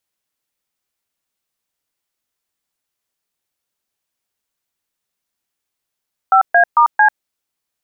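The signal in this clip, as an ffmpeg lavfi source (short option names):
-f lavfi -i "aevalsrc='0.335*clip(min(mod(t,0.224),0.094-mod(t,0.224))/0.002,0,1)*(eq(floor(t/0.224),0)*(sin(2*PI*770*mod(t,0.224))+sin(2*PI*1336*mod(t,0.224)))+eq(floor(t/0.224),1)*(sin(2*PI*697*mod(t,0.224))+sin(2*PI*1633*mod(t,0.224)))+eq(floor(t/0.224),2)*(sin(2*PI*941*mod(t,0.224))+sin(2*PI*1209*mod(t,0.224)))+eq(floor(t/0.224),3)*(sin(2*PI*852*mod(t,0.224))+sin(2*PI*1633*mod(t,0.224))))':d=0.896:s=44100"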